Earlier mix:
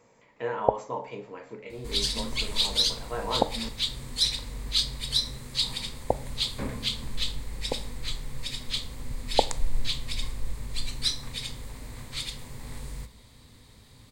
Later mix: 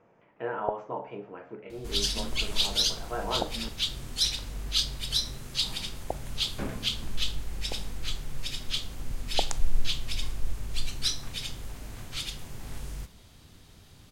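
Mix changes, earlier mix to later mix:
speech: add LPF 1900 Hz 12 dB/oct; first sound -8.5 dB; master: remove ripple EQ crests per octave 0.98, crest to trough 7 dB

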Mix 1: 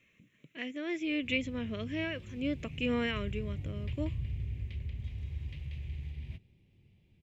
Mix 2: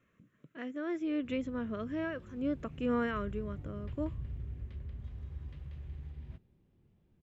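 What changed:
background: add bell 100 Hz -7 dB 1.2 oct; master: add resonant high shelf 1800 Hz -8.5 dB, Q 3

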